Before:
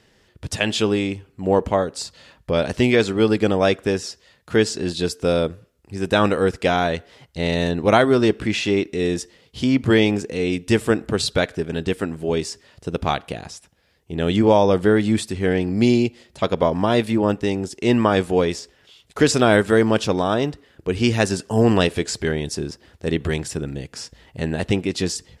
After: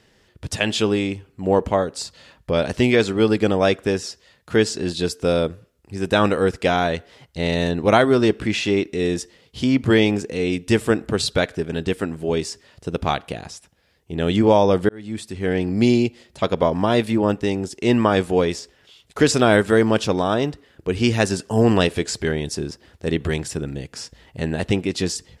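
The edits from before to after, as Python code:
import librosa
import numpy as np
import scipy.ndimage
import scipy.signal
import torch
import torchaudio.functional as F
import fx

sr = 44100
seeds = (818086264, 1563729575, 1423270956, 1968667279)

y = fx.edit(x, sr, fx.fade_in_span(start_s=14.89, length_s=0.76), tone=tone)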